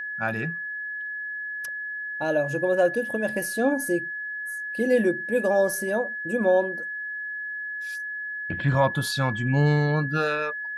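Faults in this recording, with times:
whistle 1,700 Hz −30 dBFS

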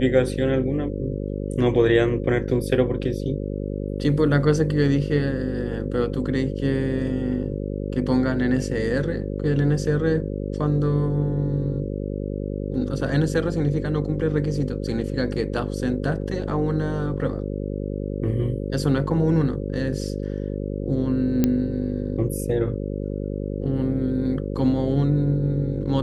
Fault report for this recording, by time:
mains buzz 50 Hz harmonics 11 −28 dBFS
0:21.44: click −7 dBFS

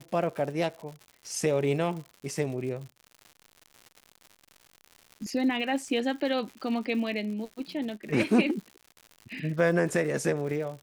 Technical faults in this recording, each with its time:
surface crackle 130 per second −38 dBFS

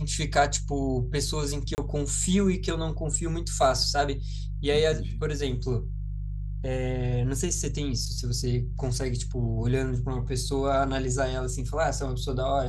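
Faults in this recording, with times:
mains hum 50 Hz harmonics 3 −32 dBFS
0:01.75–0:01.78: drop-out 29 ms

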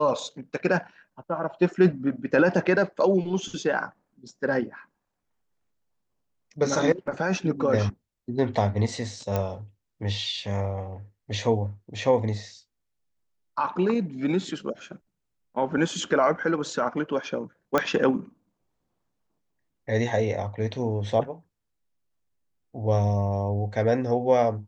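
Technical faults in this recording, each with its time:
0:09.36: click −13 dBFS
0:17.78: click −9 dBFS

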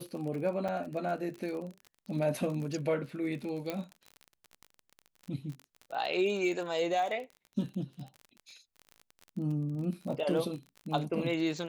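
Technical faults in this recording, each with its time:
surface crackle 35 per second −38 dBFS
0:00.68–0:00.69: drop-out 5.3 ms
0:03.70: click −20 dBFS

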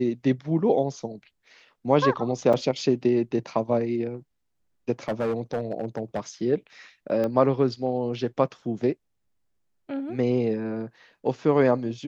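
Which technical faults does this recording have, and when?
0:02.53–0:02.54: drop-out 5.3 ms
0:05.08–0:06.20: clipping −21.5 dBFS
0:07.24: click −17 dBFS

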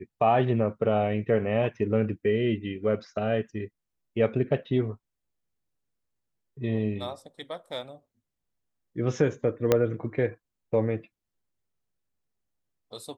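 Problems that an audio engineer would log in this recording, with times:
0:09.72: click −7 dBFS

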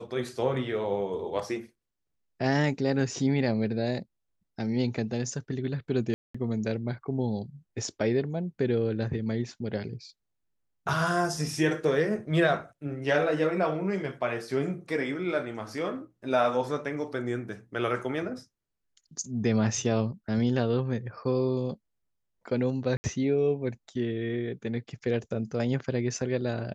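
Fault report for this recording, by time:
0:06.14–0:06.34: drop-out 205 ms
0:22.97–0:23.04: drop-out 70 ms

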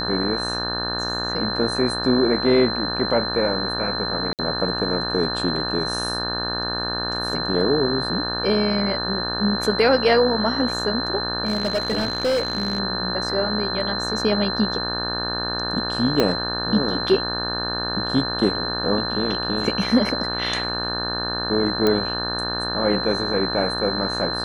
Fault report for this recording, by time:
mains buzz 60 Hz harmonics 30 −29 dBFS
whistle 4,100 Hz −26 dBFS
0:04.33–0:04.39: drop-out 58 ms
0:11.45–0:12.80: clipping −17 dBFS
0:16.20: click −5 dBFS
0:21.87: click −7 dBFS

